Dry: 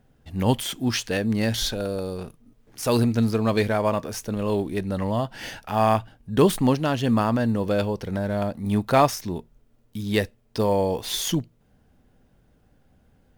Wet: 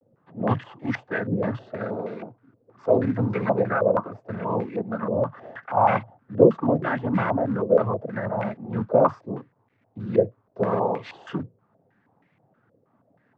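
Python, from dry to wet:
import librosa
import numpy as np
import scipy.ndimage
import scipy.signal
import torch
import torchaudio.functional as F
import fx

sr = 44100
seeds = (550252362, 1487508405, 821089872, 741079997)

y = fx.noise_vocoder(x, sr, seeds[0], bands=16)
y = fx.quant_companded(y, sr, bits=6)
y = fx.filter_held_lowpass(y, sr, hz=6.3, low_hz=520.0, high_hz=2100.0)
y = y * librosa.db_to_amplitude(-3.5)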